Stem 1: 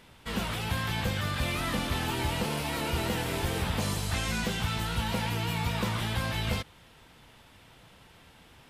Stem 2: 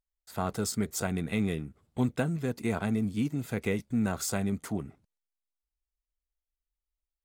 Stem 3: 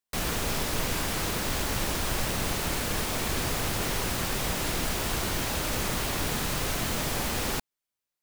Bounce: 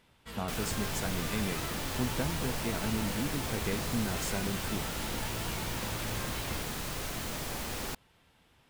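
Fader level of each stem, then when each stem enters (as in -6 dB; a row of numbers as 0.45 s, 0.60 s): -10.0 dB, -5.5 dB, -7.5 dB; 0.00 s, 0.00 s, 0.35 s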